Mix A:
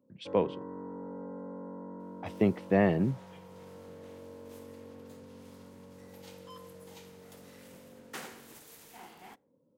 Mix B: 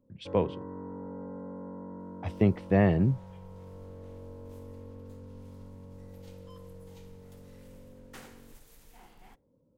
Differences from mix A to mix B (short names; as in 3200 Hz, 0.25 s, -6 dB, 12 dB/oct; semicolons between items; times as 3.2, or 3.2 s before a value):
second sound -7.0 dB; master: remove HPF 180 Hz 12 dB/oct